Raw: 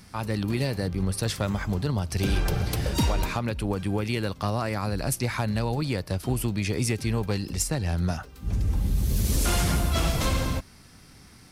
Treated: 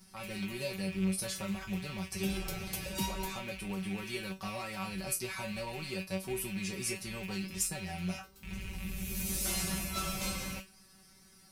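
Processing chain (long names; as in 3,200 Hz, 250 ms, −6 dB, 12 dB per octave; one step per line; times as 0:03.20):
loose part that buzzes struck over −33 dBFS, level −24 dBFS
high-shelf EQ 5,800 Hz +9.5 dB
tuned comb filter 190 Hz, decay 0.2 s, harmonics all, mix 100%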